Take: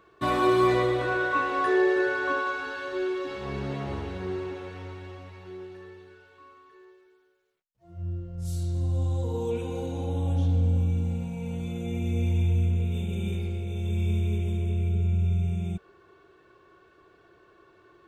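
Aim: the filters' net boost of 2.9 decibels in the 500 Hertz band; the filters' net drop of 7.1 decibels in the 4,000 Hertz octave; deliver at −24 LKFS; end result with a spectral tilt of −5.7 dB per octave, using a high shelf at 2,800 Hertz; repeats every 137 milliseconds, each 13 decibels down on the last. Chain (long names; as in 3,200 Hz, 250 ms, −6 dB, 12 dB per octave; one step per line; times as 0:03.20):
parametric band 500 Hz +4.5 dB
high-shelf EQ 2,800 Hz −3.5 dB
parametric band 4,000 Hz −6.5 dB
repeating echo 137 ms, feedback 22%, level −13 dB
level +2 dB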